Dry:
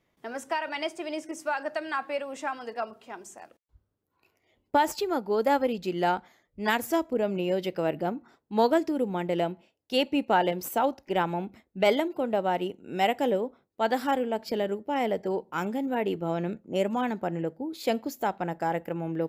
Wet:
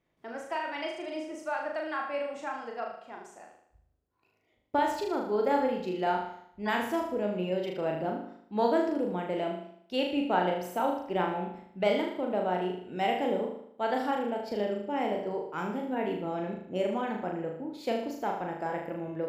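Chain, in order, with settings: LPF 3500 Hz 6 dB/oct; on a send: flutter echo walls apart 6.6 m, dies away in 0.67 s; on the sum: gain -5 dB

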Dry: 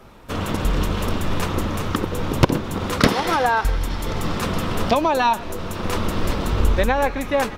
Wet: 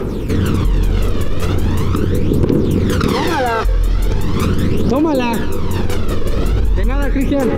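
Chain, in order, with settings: limiter -13.5 dBFS, peak gain reduction 8.5 dB; resonant low shelf 530 Hz +6 dB, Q 3; split-band echo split 960 Hz, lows 0.143 s, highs 0.218 s, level -15 dB; phaser 0.4 Hz, delay 1.8 ms, feedback 55%; fast leveller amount 70%; gain -6.5 dB

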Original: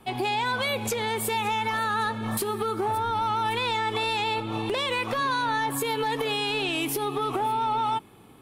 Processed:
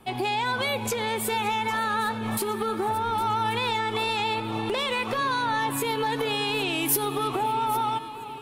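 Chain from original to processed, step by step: 6.85–7.28 high shelf 6900 Hz +11.5 dB; echo with dull and thin repeats by turns 0.404 s, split 1200 Hz, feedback 74%, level -13 dB

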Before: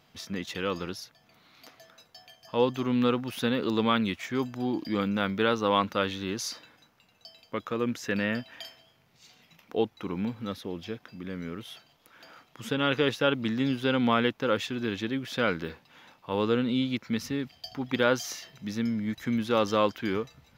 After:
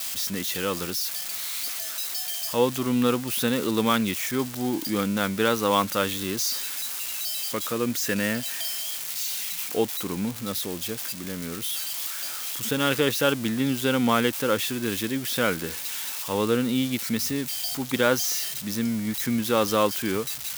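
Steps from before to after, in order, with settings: switching spikes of -24.5 dBFS; gain +2.5 dB

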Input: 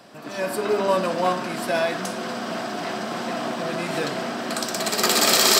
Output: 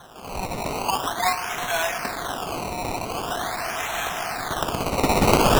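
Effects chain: steep high-pass 690 Hz 96 dB/oct; in parallel at -0.5 dB: compressor, threshold -34 dBFS, peak gain reduction 18.5 dB; on the sum: decimation with a swept rate 18×, swing 100% 0.44 Hz

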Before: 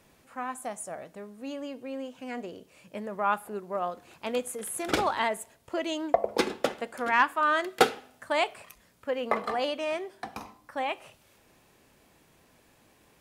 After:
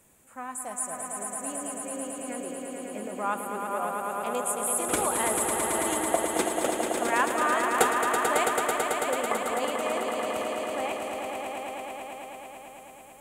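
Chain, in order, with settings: resonant high shelf 6300 Hz +7.5 dB, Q 3; swelling echo 0.11 s, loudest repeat 5, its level -6 dB; gain -3 dB

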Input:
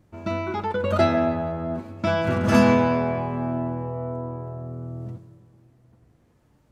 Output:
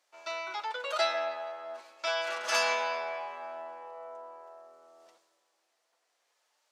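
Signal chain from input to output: HPF 600 Hz 24 dB/oct; bell 5100 Hz +13.5 dB 2.4 oct; gain -9 dB

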